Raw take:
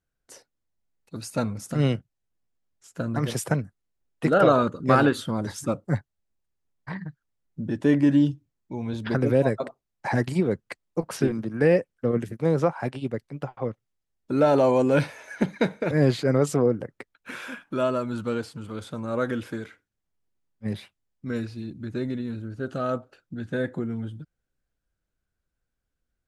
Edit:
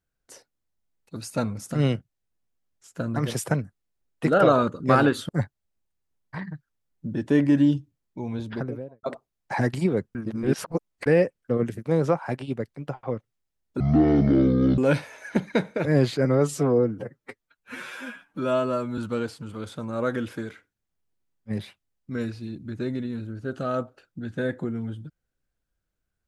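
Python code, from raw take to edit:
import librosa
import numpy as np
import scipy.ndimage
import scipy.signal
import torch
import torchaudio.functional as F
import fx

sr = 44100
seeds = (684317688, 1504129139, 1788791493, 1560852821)

y = fx.studio_fade_out(x, sr, start_s=8.77, length_s=0.8)
y = fx.edit(y, sr, fx.cut(start_s=5.29, length_s=0.54),
    fx.reverse_span(start_s=10.69, length_s=0.91),
    fx.speed_span(start_s=14.34, length_s=0.5, speed=0.51),
    fx.stretch_span(start_s=16.31, length_s=1.82, factor=1.5), tone=tone)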